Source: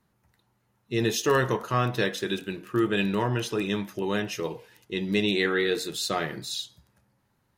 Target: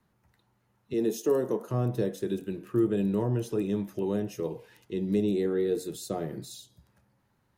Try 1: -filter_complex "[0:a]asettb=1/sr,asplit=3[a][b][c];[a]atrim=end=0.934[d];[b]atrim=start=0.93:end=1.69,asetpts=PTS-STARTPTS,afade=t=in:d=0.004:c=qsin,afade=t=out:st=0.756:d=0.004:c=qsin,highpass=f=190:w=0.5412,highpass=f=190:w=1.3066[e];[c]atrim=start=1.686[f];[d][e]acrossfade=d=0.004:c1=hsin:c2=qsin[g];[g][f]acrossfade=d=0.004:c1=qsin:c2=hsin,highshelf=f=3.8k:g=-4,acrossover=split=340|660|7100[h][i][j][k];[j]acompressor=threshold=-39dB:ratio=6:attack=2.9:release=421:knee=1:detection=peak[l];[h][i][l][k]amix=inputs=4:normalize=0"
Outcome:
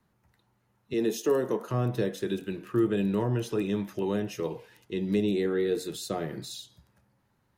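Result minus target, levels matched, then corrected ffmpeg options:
compressor: peak gain reduction -8 dB
-filter_complex "[0:a]asettb=1/sr,asplit=3[a][b][c];[a]atrim=end=0.934[d];[b]atrim=start=0.93:end=1.69,asetpts=PTS-STARTPTS,afade=t=in:d=0.004:c=qsin,afade=t=out:st=0.756:d=0.004:c=qsin,highpass=f=190:w=0.5412,highpass=f=190:w=1.3066[e];[c]atrim=start=1.686[f];[d][e]acrossfade=d=0.004:c1=hsin:c2=qsin[g];[g][f]acrossfade=d=0.004:c1=qsin:c2=hsin,highshelf=f=3.8k:g=-4,acrossover=split=340|660|7100[h][i][j][k];[j]acompressor=threshold=-48.5dB:ratio=6:attack=2.9:release=421:knee=1:detection=peak[l];[h][i][l][k]amix=inputs=4:normalize=0"

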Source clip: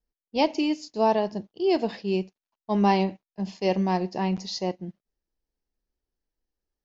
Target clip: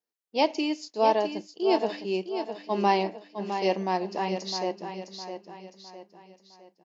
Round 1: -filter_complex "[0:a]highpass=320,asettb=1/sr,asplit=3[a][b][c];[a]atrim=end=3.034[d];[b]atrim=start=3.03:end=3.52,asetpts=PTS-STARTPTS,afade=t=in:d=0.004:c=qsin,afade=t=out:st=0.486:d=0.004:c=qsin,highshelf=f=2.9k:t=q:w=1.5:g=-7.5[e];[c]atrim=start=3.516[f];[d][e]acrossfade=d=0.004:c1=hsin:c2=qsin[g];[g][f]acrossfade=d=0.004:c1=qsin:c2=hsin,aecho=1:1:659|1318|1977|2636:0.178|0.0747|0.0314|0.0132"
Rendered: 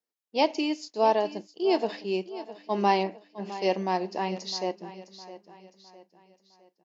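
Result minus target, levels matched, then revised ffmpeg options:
echo-to-direct -6.5 dB
-filter_complex "[0:a]highpass=320,asettb=1/sr,asplit=3[a][b][c];[a]atrim=end=3.034[d];[b]atrim=start=3.03:end=3.52,asetpts=PTS-STARTPTS,afade=t=in:d=0.004:c=qsin,afade=t=out:st=0.486:d=0.004:c=qsin,highshelf=f=2.9k:t=q:w=1.5:g=-7.5[e];[c]atrim=start=3.516[f];[d][e]acrossfade=d=0.004:c1=hsin:c2=qsin[g];[g][f]acrossfade=d=0.004:c1=qsin:c2=hsin,aecho=1:1:659|1318|1977|2636|3295:0.376|0.158|0.0663|0.0278|0.0117"

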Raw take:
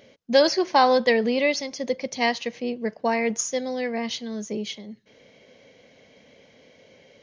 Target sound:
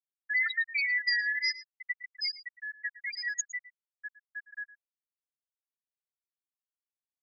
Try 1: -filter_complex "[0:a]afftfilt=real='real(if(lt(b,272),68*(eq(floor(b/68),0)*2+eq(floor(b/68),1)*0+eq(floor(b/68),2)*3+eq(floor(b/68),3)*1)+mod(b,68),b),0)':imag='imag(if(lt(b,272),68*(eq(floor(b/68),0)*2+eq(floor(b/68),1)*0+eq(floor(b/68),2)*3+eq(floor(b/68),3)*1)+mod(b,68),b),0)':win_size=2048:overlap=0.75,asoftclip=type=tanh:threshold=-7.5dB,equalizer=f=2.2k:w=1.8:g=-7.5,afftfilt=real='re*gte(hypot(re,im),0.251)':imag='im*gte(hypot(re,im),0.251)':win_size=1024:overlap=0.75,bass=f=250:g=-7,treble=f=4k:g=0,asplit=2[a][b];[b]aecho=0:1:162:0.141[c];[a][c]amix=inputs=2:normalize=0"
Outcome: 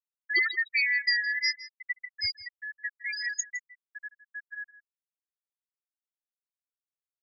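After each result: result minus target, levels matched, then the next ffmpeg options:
echo 51 ms late; soft clip: distortion -10 dB
-filter_complex "[0:a]afftfilt=real='real(if(lt(b,272),68*(eq(floor(b/68),0)*2+eq(floor(b/68),1)*0+eq(floor(b/68),2)*3+eq(floor(b/68),3)*1)+mod(b,68),b),0)':imag='imag(if(lt(b,272),68*(eq(floor(b/68),0)*2+eq(floor(b/68),1)*0+eq(floor(b/68),2)*3+eq(floor(b/68),3)*1)+mod(b,68),b),0)':win_size=2048:overlap=0.75,asoftclip=type=tanh:threshold=-7.5dB,equalizer=f=2.2k:w=1.8:g=-7.5,afftfilt=real='re*gte(hypot(re,im),0.251)':imag='im*gte(hypot(re,im),0.251)':win_size=1024:overlap=0.75,bass=f=250:g=-7,treble=f=4k:g=0,asplit=2[a][b];[b]aecho=0:1:111:0.141[c];[a][c]amix=inputs=2:normalize=0"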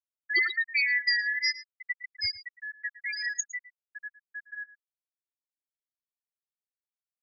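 soft clip: distortion -10 dB
-filter_complex "[0:a]afftfilt=real='real(if(lt(b,272),68*(eq(floor(b/68),0)*2+eq(floor(b/68),1)*0+eq(floor(b/68),2)*3+eq(floor(b/68),3)*1)+mod(b,68),b),0)':imag='imag(if(lt(b,272),68*(eq(floor(b/68),0)*2+eq(floor(b/68),1)*0+eq(floor(b/68),2)*3+eq(floor(b/68),3)*1)+mod(b,68),b),0)':win_size=2048:overlap=0.75,asoftclip=type=tanh:threshold=-15dB,equalizer=f=2.2k:w=1.8:g=-7.5,afftfilt=real='re*gte(hypot(re,im),0.251)':imag='im*gte(hypot(re,im),0.251)':win_size=1024:overlap=0.75,bass=f=250:g=-7,treble=f=4k:g=0,asplit=2[a][b];[b]aecho=0:1:111:0.141[c];[a][c]amix=inputs=2:normalize=0"

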